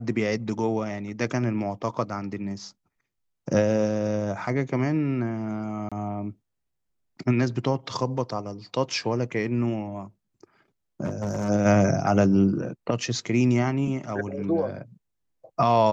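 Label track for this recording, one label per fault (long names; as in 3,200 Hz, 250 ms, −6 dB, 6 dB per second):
5.890000	5.920000	drop-out 26 ms
11.040000	11.500000	clipping −24 dBFS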